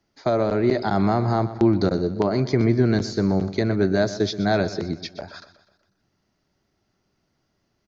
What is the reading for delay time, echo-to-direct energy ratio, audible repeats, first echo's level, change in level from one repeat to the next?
124 ms, −13.5 dB, 4, −14.5 dB, −6.0 dB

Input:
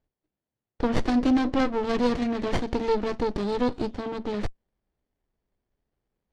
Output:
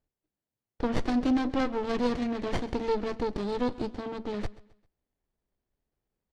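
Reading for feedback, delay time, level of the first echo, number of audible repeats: 36%, 132 ms, −20.0 dB, 2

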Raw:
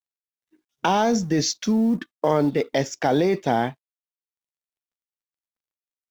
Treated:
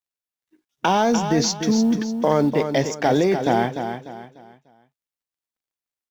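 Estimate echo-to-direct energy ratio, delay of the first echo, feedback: −7.5 dB, 297 ms, 34%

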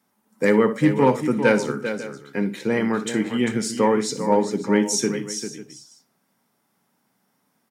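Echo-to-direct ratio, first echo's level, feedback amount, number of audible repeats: −8.0 dB, −14.5 dB, repeats not evenly spaced, 3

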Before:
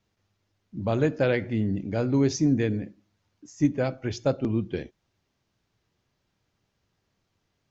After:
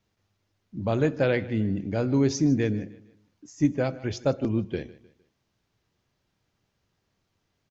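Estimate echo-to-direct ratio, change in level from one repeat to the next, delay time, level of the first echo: −18.5 dB, −8.5 dB, 153 ms, −19.0 dB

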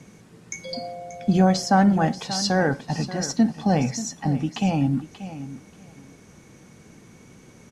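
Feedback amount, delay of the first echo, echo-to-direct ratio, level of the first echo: 16%, 584 ms, −13.5 dB, −13.5 dB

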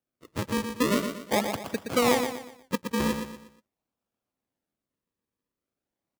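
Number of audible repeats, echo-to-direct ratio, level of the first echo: 4, −6.5 dB, −7.0 dB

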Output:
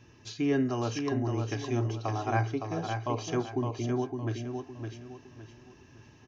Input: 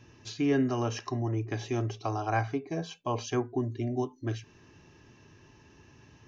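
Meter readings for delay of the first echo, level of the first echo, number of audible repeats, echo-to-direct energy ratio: 562 ms, −5.5 dB, 4, −5.0 dB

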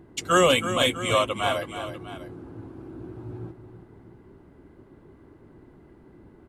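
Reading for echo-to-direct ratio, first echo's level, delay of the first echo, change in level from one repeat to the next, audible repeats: −9.5 dB, −10.5 dB, 324 ms, −5.0 dB, 2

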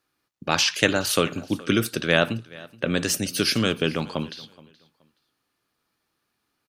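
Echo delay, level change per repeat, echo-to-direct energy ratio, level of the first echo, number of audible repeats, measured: 424 ms, −12.5 dB, −22.0 dB, −22.0 dB, 2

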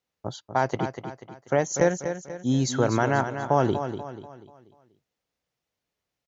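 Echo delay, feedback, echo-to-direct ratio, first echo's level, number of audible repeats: 243 ms, 42%, −8.0 dB, −9.0 dB, 4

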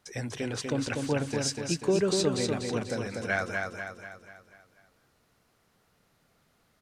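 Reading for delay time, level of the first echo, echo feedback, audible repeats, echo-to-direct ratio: 244 ms, −4.0 dB, 49%, 6, −3.0 dB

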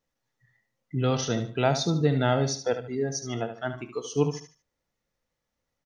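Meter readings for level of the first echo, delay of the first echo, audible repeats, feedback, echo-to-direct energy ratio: −10.0 dB, 74 ms, 3, 30%, −9.5 dB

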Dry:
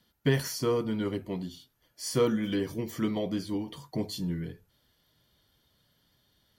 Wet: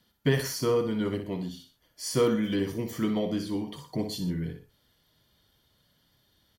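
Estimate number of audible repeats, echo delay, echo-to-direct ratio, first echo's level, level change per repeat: 2, 61 ms, −8.0 dB, −9.0 dB, −7.0 dB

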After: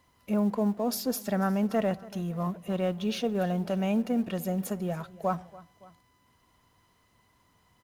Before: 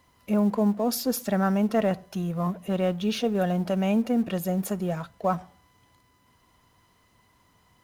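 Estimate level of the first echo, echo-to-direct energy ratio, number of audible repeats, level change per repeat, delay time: −20.5 dB, −19.0 dB, 2, −4.5 dB, 283 ms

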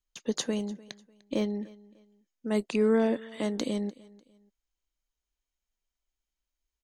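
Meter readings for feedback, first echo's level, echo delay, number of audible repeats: 32%, −22.0 dB, 298 ms, 2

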